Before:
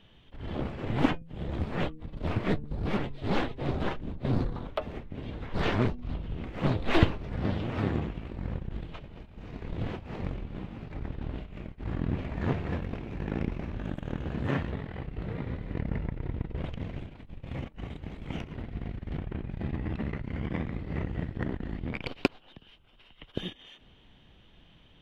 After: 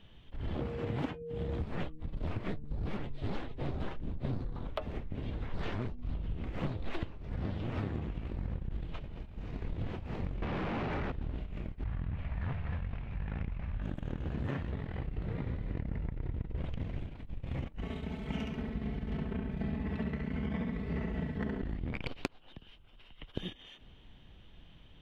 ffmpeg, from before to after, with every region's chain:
-filter_complex "[0:a]asettb=1/sr,asplit=3[a][b][c];[a]atrim=end=0.594[d];[b]atrim=start=0.59:end=1.61,asetpts=PTS-STARTPTS,afade=t=in:d=0.004:c=qsin,afade=t=out:st=1.016:d=0.004:c=qsin,highpass=56,aeval=exprs='val(0)+0.0158*sin(2*PI*470*n/s)':c=same[e];[c]atrim=start=1.606[f];[d][e]acrossfade=d=0.004:c1=hsin:c2=qsin[g];[g][f]acrossfade=d=0.004:c1=qsin:c2=hsin,asettb=1/sr,asplit=3[h][i][j];[h]atrim=end=10.424[k];[i]atrim=start=10.42:end=11.12,asetpts=PTS-STARTPTS,afade=t=in:d=0.004:c=qsin,afade=t=out:st=0.696:d=0.004:c=qsin,asplit=2[l][m];[m]highpass=f=720:p=1,volume=42dB,asoftclip=type=tanh:threshold=-23.5dB[n];[l][n]amix=inputs=2:normalize=0,lowpass=f=1.6k:p=1,volume=-6dB,lowpass=3.4k[o];[j]atrim=start=11.116[p];[k][o]acrossfade=d=0.004:c1=hsin:c2=qsin[q];[q][p]acrossfade=d=0.004:c1=qsin:c2=hsin,asettb=1/sr,asplit=3[r][s][t];[r]atrim=end=11.844[u];[s]atrim=start=11.84:end=13.82,asetpts=PTS-STARTPTS,afade=t=in:d=0.004:c=qsin,afade=t=out:st=1.976:d=0.004:c=qsin,lowpass=3.1k,equalizer=f=340:w=0.99:g=-15[v];[t]atrim=start=13.816[w];[u][v]acrossfade=d=0.004:c1=hsin:c2=qsin[x];[x][w]acrossfade=d=0.004:c1=qsin:c2=hsin,asettb=1/sr,asplit=3[y][z][aa];[y]atrim=end=17.824[ab];[z]atrim=start=17.82:end=21.62,asetpts=PTS-STARTPTS,afade=t=in:d=0.004:c=qsin,afade=t=out:st=3.796:d=0.004:c=qsin,highpass=71,aecho=1:1:4.6:0.85,atrim=end_sample=167580,aecho=1:1:69|138|207|276:0.708|0.234|0.0771|0.0254,atrim=end_sample=167580[ac];[aa]atrim=start=21.616[ad];[ab][ac]acrossfade=d=0.004:c1=hsin:c2=qsin[ae];[ae][ad]acrossfade=d=0.004:c1=qsin:c2=hsin,lowshelf=f=99:g=7.5,acompressor=threshold=-29dB:ratio=10,volume=-2dB"

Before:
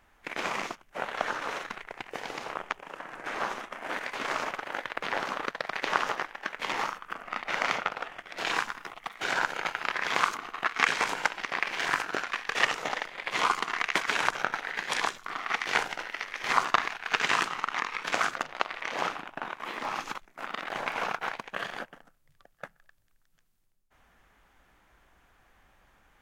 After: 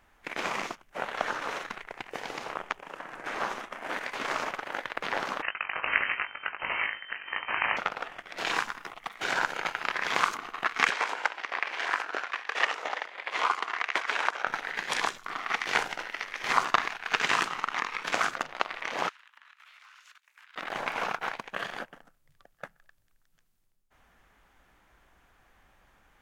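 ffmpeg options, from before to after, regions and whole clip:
-filter_complex "[0:a]asettb=1/sr,asplit=3[a][b][c];[a]atrim=end=5.424[d];[b]atrim=start=5.42:end=7.77,asetpts=PTS-STARTPTS,afade=t=in:d=0.004:c=qsin,afade=t=out:st=2.346:d=0.004:c=qsin,lowshelf=f=140:g=8.5,asplit=2[e][f];[f]adelay=19,volume=-7dB[g];[e][g]amix=inputs=2:normalize=0,atrim=end_sample=103635,lowpass=f=2.6k:t=q:w=0.5098,lowpass=f=2.6k:t=q:w=0.6013,lowpass=f=2.6k:t=q:w=0.9,lowpass=f=2.6k:t=q:w=2.563,afreqshift=-3100[h];[c]atrim=start=7.766[i];[d][h]acrossfade=d=0.004:c1=hsin:c2=qsin[j];[j][i]acrossfade=d=0.004:c1=qsin:c2=hsin,asettb=1/sr,asplit=3[k][l][m];[k]atrim=end=10.904[n];[l]atrim=start=10.9:end=14.47,asetpts=PTS-STARTPTS,afade=t=in:d=0.004:c=qsin,afade=t=out:st=3.566:d=0.004:c=qsin,highpass=450,aemphasis=mode=reproduction:type=50kf[o];[m]atrim=start=14.466[p];[n][o]acrossfade=d=0.004:c1=hsin:c2=qsin[q];[q][p]acrossfade=d=0.004:c1=qsin:c2=hsin,asettb=1/sr,asplit=3[r][s][t];[r]atrim=end=19.094[u];[s]atrim=start=19.09:end=20.56,asetpts=PTS-STARTPTS,afade=t=in:d=0.004:c=qsin,afade=t=out:st=1.466:d=0.004:c=qsin,highpass=1.3k,acompressor=threshold=-51dB:ratio=10:attack=3.2:release=140:knee=1:detection=peak,afreqshift=220[v];[t]atrim=start=20.556[w];[u][v]acrossfade=d=0.004:c1=hsin:c2=qsin[x];[x][w]acrossfade=d=0.004:c1=qsin:c2=hsin"

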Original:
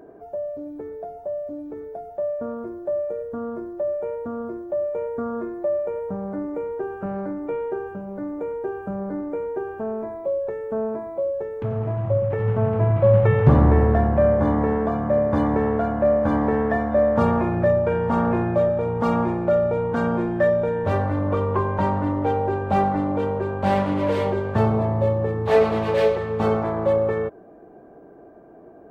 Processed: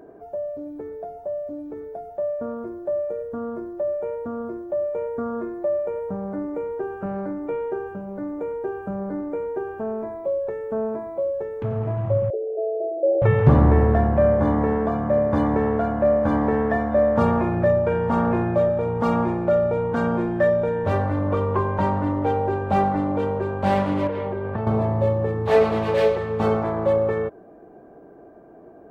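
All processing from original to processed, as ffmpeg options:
-filter_complex "[0:a]asettb=1/sr,asplit=3[a][b][c];[a]atrim=end=12.304[d];[b]atrim=start=12.3:end=13.22,asetpts=PTS-STARTPTS,afade=t=in:d=0.004:c=qsin,afade=t=out:st=0.916:d=0.004:c=qsin,aeval=exprs='0.266*(abs(mod(val(0)/0.266+3,4)-2)-1)':c=same,asuperpass=centerf=480:order=20:qfactor=1.2[e];[c]atrim=start=13.216[f];[d][e]acrossfade=d=0.004:c1=hsin:c2=qsin[g];[g][f]acrossfade=d=0.004:c1=qsin:c2=hsin,asettb=1/sr,asplit=3[h][i][j];[h]atrim=end=24.074[k];[i]atrim=start=24.07:end=24.67,asetpts=PTS-STARTPTS,afade=t=in:d=0.004:c=qsin,afade=t=out:st=0.596:d=0.004:c=qsin,lowpass=2.4k,acompressor=threshold=-23dB:ratio=5:attack=3.2:release=140:knee=1:detection=peak[l];[j]atrim=start=24.666[m];[k][l]acrossfade=d=0.004:c1=hsin:c2=qsin[n];[n][m]acrossfade=d=0.004:c1=qsin:c2=hsin"

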